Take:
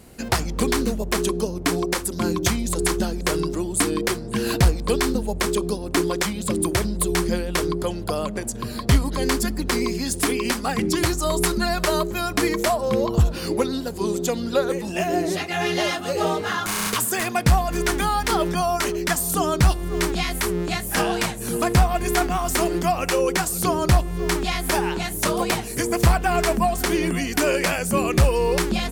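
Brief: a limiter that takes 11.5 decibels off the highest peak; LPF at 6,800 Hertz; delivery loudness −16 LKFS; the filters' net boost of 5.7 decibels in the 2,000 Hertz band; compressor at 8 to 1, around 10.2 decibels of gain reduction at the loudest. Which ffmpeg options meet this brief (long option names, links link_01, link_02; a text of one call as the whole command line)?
ffmpeg -i in.wav -af "lowpass=6800,equalizer=frequency=2000:width_type=o:gain=7,acompressor=threshold=-22dB:ratio=8,volume=13.5dB,alimiter=limit=-6.5dB:level=0:latency=1" out.wav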